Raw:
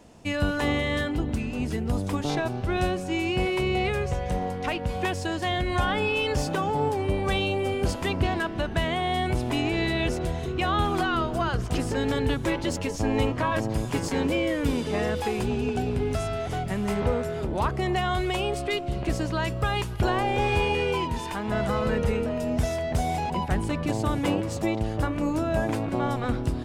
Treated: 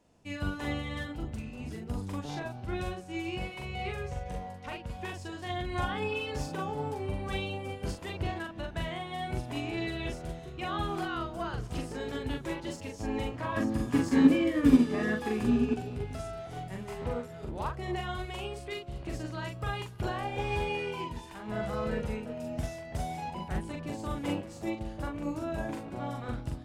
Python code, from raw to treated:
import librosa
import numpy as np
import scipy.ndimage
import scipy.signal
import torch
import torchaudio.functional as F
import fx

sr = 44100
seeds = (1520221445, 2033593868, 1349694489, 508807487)

y = fx.doubler(x, sr, ms=42.0, db=-2.5)
y = fx.small_body(y, sr, hz=(260.0, 1200.0, 1700.0), ring_ms=45, db=13, at=(13.57, 15.74))
y = fx.upward_expand(y, sr, threshold_db=-33.0, expansion=1.5)
y = F.gain(torch.from_numpy(y), -4.5).numpy()